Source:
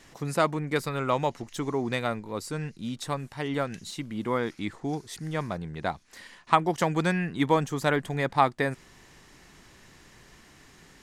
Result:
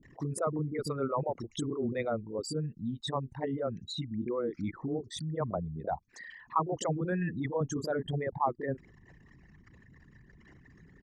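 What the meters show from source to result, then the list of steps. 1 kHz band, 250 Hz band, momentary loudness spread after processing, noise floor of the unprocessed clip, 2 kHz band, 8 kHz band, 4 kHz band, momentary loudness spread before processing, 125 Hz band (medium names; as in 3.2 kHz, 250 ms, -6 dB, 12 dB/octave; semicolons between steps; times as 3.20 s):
-8.0 dB, -4.5 dB, 5 LU, -55 dBFS, -12.0 dB, -3.5 dB, -5.0 dB, 10 LU, -3.5 dB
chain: resonances exaggerated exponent 3; high-pass 60 Hz 6 dB/octave; in parallel at +1 dB: compressor with a negative ratio -29 dBFS, ratio -0.5; on the sum: bands offset in time lows, highs 30 ms, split 350 Hz; trim -8 dB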